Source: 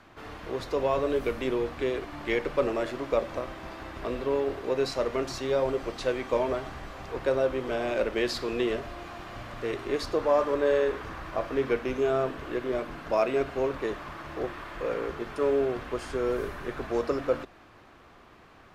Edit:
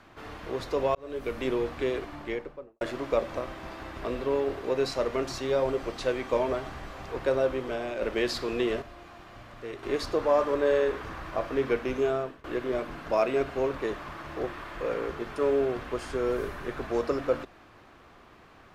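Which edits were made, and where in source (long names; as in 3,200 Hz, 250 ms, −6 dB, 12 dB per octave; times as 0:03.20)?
0:00.95–0:01.45: fade in
0:01.96–0:02.81: fade out and dull
0:07.50–0:08.02: fade out, to −6.5 dB
0:08.82–0:09.83: clip gain −7 dB
0:12.04–0:12.44: fade out, to −23.5 dB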